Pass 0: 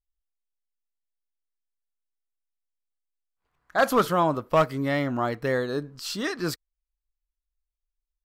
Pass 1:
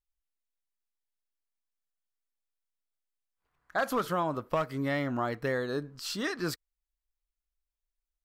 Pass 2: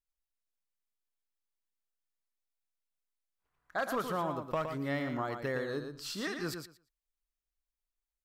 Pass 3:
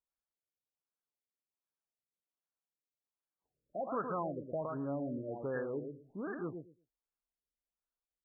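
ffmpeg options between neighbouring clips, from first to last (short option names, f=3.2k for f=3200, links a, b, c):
-af "equalizer=f=1.6k:w=1.5:g=2,acompressor=threshold=-22dB:ratio=6,volume=-3.5dB"
-af "aecho=1:1:115|230|345:0.447|0.0715|0.0114,volume=-4.5dB"
-af "asoftclip=type=tanh:threshold=-27.5dB,highpass=f=140:p=1,afftfilt=real='re*lt(b*sr/1024,580*pow(1800/580,0.5+0.5*sin(2*PI*1.3*pts/sr)))':imag='im*lt(b*sr/1024,580*pow(1800/580,0.5+0.5*sin(2*PI*1.3*pts/sr)))':win_size=1024:overlap=0.75"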